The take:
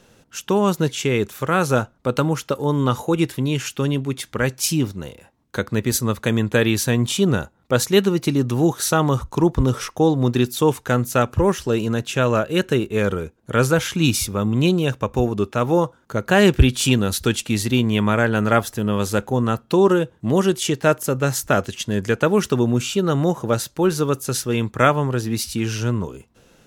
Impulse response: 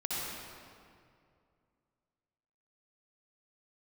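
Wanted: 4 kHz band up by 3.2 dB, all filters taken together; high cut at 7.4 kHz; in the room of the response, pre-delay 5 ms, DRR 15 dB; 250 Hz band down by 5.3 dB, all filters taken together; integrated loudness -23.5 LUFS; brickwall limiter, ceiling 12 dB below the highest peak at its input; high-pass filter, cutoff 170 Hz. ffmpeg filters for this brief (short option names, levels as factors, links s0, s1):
-filter_complex "[0:a]highpass=170,lowpass=7400,equalizer=f=250:t=o:g=-6,equalizer=f=4000:t=o:g=4.5,alimiter=limit=0.251:level=0:latency=1,asplit=2[s0][s1];[1:a]atrim=start_sample=2205,adelay=5[s2];[s1][s2]afir=irnorm=-1:irlink=0,volume=0.0944[s3];[s0][s3]amix=inputs=2:normalize=0,volume=1.19"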